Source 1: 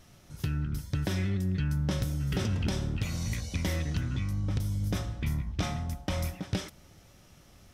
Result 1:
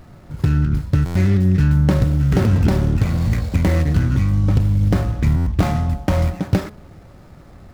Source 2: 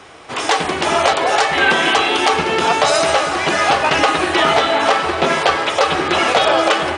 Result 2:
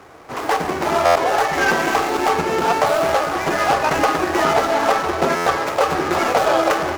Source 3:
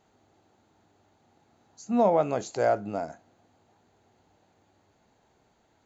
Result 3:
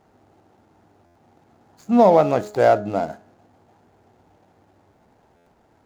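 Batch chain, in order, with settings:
median filter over 15 samples; de-hum 209.4 Hz, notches 8; stuck buffer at 1.05/5.36, samples 512, times 8; match loudness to -18 LUFS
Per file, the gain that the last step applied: +14.5, -1.0, +9.0 dB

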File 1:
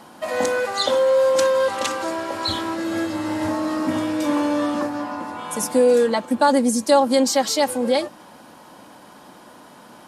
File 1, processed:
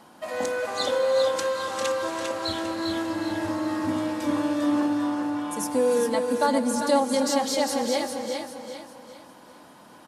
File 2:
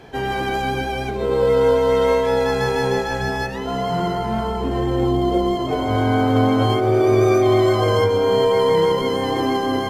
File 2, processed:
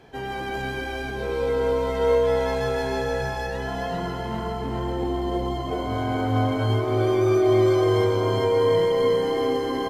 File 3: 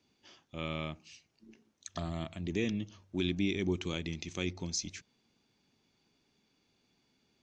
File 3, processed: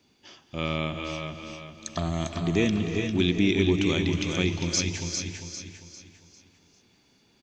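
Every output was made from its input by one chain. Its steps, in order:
on a send: feedback echo 0.399 s, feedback 38%, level -5.5 dB; on the sum: non-linear reverb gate 0.44 s rising, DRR 7 dB; normalise peaks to -9 dBFS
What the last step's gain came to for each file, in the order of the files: -7.0, -8.0, +8.5 dB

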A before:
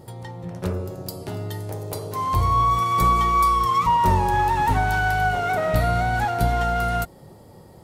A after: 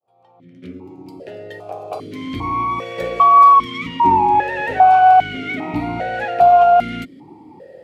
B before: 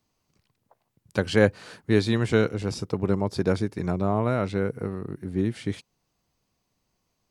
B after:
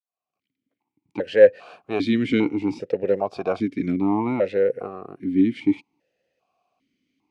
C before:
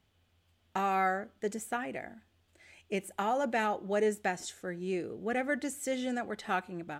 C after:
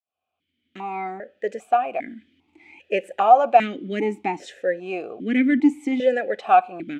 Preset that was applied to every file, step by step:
opening faded in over 2.23 s; in parallel at -8.5 dB: soft clip -20 dBFS; on the sum: vowel sequencer 2.5 Hz; normalise peaks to -2 dBFS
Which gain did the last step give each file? +14.5, +13.5, +19.5 dB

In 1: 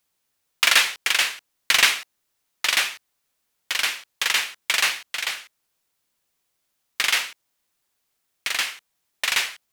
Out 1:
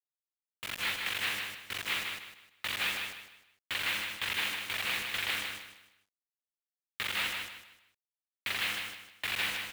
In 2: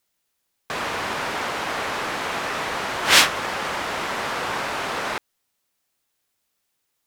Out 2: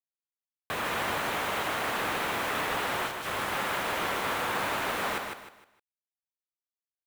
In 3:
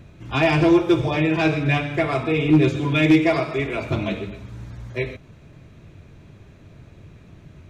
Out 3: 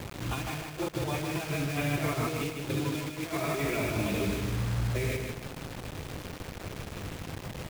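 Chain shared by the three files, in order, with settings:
steep low-pass 4100 Hz 36 dB/oct; negative-ratio compressor -26 dBFS, ratio -0.5; limiter -19.5 dBFS; buzz 100 Hz, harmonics 5, -49 dBFS -3 dB/oct; bit-crush 6-bit; on a send: feedback echo 0.154 s, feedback 32%, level -5 dB; on the sum: gain -3.5 dB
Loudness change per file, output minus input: -12.0, -7.0, -13.0 LU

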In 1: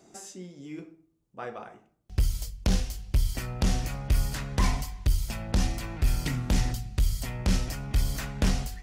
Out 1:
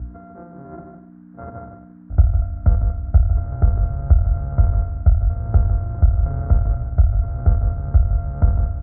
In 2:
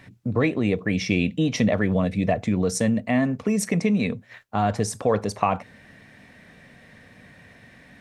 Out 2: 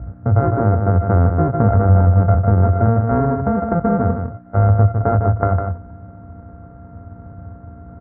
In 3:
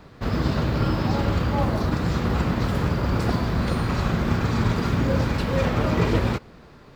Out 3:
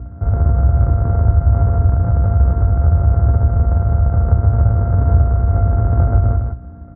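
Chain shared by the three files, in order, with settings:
sample sorter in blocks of 64 samples; tilt -2.5 dB/oct; on a send: echo 0.154 s -7 dB; on the sum: hum 60 Hz, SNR 17 dB; resonant low shelf 120 Hz +11.5 dB, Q 1.5; notches 60/120 Hz; compressor 1.5:1, threshold -17 dBFS; HPF 56 Hz 24 dB/oct; added noise blue -46 dBFS; elliptic low-pass 1500 Hz, stop band 70 dB; normalise peaks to -2 dBFS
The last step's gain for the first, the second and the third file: +0.5, +3.5, 0.0 dB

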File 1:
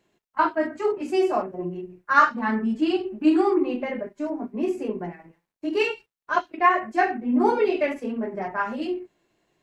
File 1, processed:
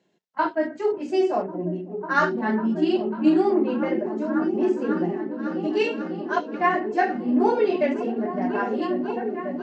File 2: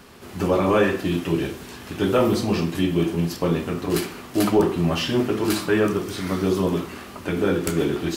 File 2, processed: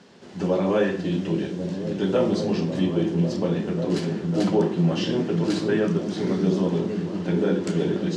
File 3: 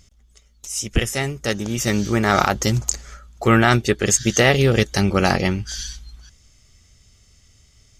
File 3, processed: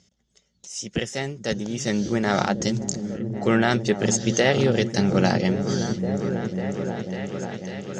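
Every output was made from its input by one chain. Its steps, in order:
speaker cabinet 150–6900 Hz, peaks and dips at 180 Hz +7 dB, 520 Hz +3 dB, 1200 Hz -8 dB, 2400 Hz -5 dB; repeats that get brighter 0.547 s, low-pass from 200 Hz, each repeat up 1 oct, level -3 dB; match loudness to -24 LUFS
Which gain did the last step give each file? 0.0, -4.0, -4.0 dB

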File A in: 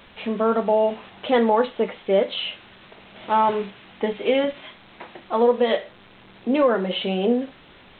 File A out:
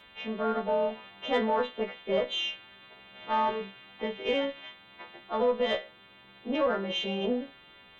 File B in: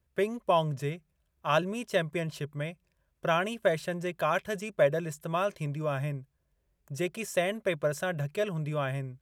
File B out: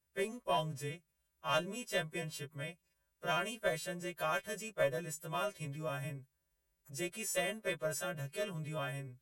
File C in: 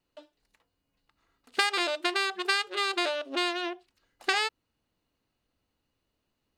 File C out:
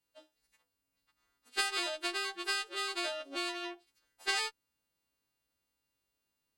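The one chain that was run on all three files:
frequency quantiser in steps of 2 st; added harmonics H 6 -29 dB, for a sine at -5.5 dBFS; gain -8.5 dB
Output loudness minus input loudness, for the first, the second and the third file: -8.0, -7.5, -6.5 LU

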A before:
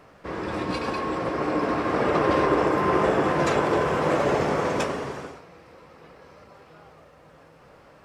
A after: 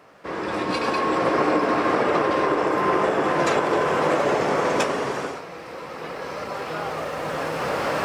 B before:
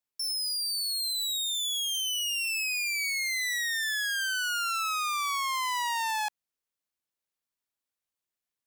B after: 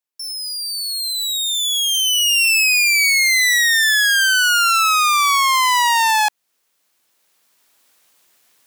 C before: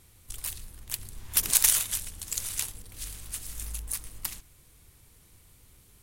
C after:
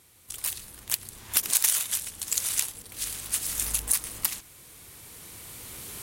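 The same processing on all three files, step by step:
recorder AGC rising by 7.6 dB/s; HPF 280 Hz 6 dB/oct; in parallel at 0 dB: compressor, threshold -25 dBFS; on the sum: gain -4.5 dB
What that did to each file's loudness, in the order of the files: +1.0, +14.0, +1.5 LU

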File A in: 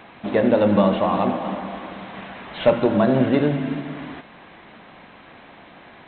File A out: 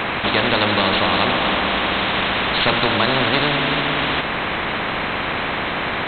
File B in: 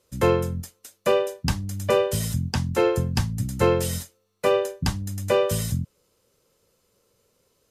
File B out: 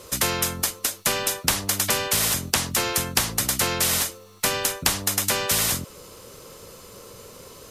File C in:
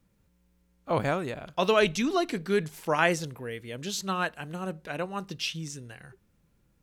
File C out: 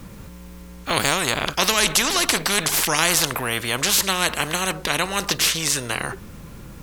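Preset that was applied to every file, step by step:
bell 1100 Hz +5 dB 0.34 oct; spectral compressor 4:1; normalise peaks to -1.5 dBFS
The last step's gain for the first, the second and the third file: +4.0, +5.5, +5.5 dB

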